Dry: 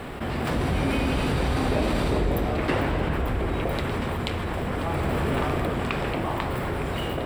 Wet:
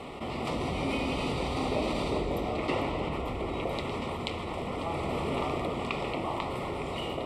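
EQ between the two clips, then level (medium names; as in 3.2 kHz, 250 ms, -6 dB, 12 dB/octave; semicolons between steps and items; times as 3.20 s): Butterworth band-stop 1.6 kHz, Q 2.4; low-pass 8.1 kHz 12 dB/octave; bass shelf 170 Hz -10 dB; -3.0 dB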